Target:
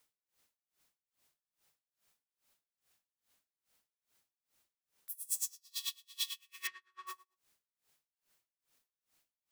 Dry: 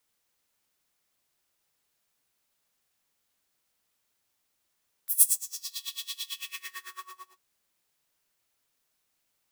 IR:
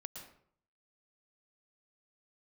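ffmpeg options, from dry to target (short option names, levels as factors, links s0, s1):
-filter_complex "[0:a]asettb=1/sr,asplit=3[s0][s1][s2];[s0]atrim=end=6.674[s3];[s1]atrim=start=6.67:end=7.07,asetpts=PTS-STARTPTS,afade=t=in:d=0.004:c=qsin,afade=t=out:st=0.396:d=0.004:c=qsin,lowpass=3600[s4];[s2]atrim=start=7.066[s5];[s3][s4]acrossfade=d=0.004:c1=hsin:c2=qsin[s6];[s6][s5]acrossfade=d=0.004:c1=qsin:c2=hsin,aeval=exprs='val(0)*pow(10,-30*(0.5-0.5*cos(2*PI*2.4*n/s))/20)':c=same,volume=1.41"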